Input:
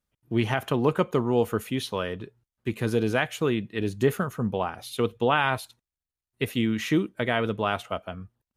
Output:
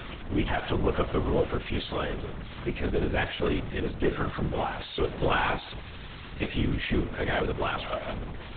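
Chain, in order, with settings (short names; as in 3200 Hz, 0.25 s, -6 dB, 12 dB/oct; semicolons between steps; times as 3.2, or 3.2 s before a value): zero-crossing step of -26 dBFS; de-hum 101.8 Hz, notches 10; LPC vocoder at 8 kHz whisper; gain -4.5 dB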